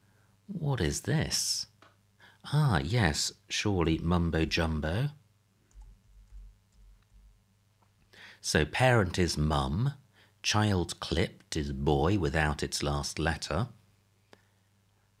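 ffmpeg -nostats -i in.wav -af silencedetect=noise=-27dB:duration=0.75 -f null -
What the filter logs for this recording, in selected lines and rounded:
silence_start: 1.61
silence_end: 2.53 | silence_duration: 0.92
silence_start: 5.07
silence_end: 8.46 | silence_duration: 3.40
silence_start: 13.64
silence_end: 15.20 | silence_duration: 1.56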